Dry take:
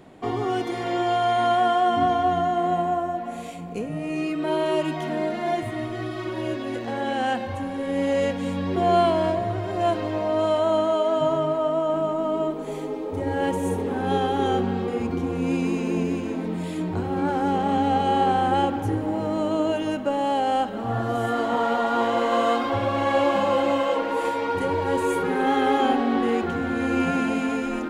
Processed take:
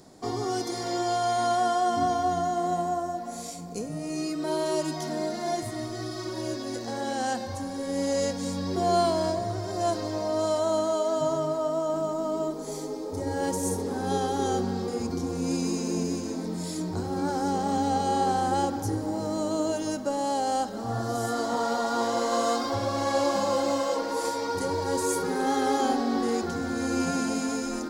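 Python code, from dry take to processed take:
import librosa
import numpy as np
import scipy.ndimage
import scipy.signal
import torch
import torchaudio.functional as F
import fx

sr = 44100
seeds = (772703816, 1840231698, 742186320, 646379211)

y = fx.high_shelf_res(x, sr, hz=3800.0, db=10.5, q=3.0)
y = y * 10.0 ** (-4.0 / 20.0)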